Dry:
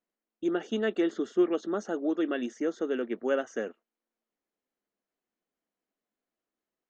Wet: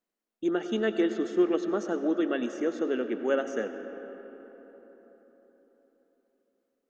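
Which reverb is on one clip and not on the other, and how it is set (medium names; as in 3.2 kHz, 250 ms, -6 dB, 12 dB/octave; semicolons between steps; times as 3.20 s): algorithmic reverb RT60 4.4 s, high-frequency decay 0.45×, pre-delay 55 ms, DRR 8.5 dB; trim +1 dB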